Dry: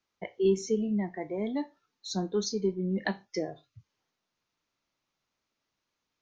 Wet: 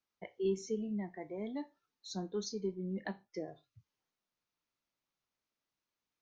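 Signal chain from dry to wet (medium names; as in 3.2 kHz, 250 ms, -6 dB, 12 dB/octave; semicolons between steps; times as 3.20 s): 3.01–3.48 s: treble shelf 2.4 kHz -8.5 dB; trim -8.5 dB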